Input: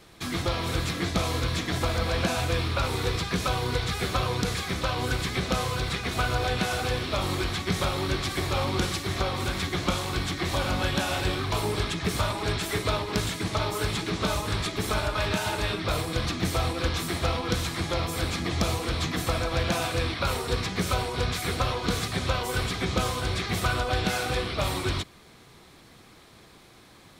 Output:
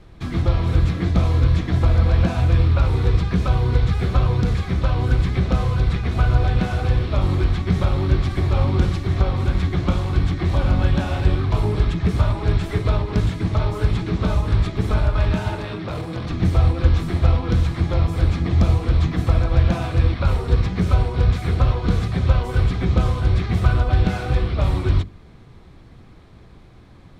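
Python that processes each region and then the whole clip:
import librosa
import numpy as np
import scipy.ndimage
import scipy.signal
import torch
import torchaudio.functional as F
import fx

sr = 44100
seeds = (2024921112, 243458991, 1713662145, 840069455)

y = fx.chain(x, sr, fx.highpass(hz=150.0, slope=12),
    fx.transformer_sat(knee_hz=800.0), at=(15.55, 16.31))
y = fx.riaa(y, sr, side='playback')
y = fx.hum_notches(y, sr, base_hz=50, count=10)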